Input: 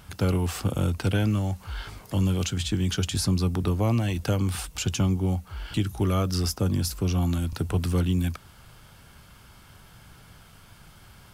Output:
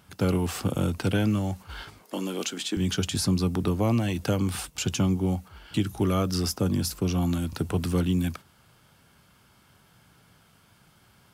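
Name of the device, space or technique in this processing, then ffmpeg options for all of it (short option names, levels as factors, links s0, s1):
filter by subtraction: -filter_complex "[0:a]asplit=2[s0][s1];[s1]lowpass=210,volume=-1[s2];[s0][s2]amix=inputs=2:normalize=0,agate=range=0.447:threshold=0.0112:ratio=16:detection=peak,asettb=1/sr,asplit=3[s3][s4][s5];[s3]atrim=end=2.034[s6];[s4]atrim=start=2.03:end=2.77,asetpts=PTS-STARTPTS,afade=t=in:d=0.004:c=qsin,afade=t=out:st=0.736:d=0.004:c=qsin,highpass=f=250:w=0.5412,highpass=f=250:w=1.3066[s7];[s5]atrim=start=2.766[s8];[s6][s7]acrossfade=d=0.004:c1=hsin:c2=qsin[s9];[s9][s8]acrossfade=d=0.004:c1=qsin:c2=hsin"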